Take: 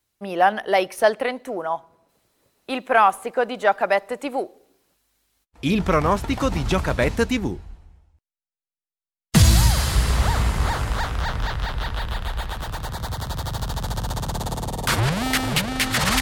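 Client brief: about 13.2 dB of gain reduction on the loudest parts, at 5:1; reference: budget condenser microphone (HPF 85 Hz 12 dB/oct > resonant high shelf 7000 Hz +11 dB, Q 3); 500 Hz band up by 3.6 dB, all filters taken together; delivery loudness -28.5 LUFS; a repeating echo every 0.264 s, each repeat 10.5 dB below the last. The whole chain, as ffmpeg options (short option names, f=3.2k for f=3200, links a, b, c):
-af "equalizer=f=500:t=o:g=4.5,acompressor=threshold=-25dB:ratio=5,highpass=85,highshelf=f=7k:t=q:w=3:g=11,aecho=1:1:264|528|792:0.299|0.0896|0.0269,volume=-1.5dB"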